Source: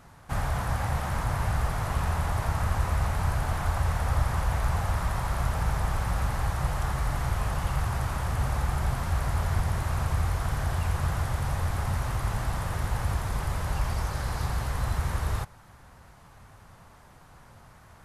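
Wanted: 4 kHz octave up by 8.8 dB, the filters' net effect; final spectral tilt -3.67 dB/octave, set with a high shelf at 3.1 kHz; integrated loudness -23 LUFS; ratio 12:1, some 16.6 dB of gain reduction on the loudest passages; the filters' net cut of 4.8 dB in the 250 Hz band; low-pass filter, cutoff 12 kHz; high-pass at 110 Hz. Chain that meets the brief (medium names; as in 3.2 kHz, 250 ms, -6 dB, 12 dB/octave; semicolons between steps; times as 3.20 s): high-pass 110 Hz; low-pass 12 kHz; peaking EQ 250 Hz -8 dB; treble shelf 3.1 kHz +8 dB; peaking EQ 4 kHz +5 dB; compression 12:1, threshold -44 dBFS; trim +24 dB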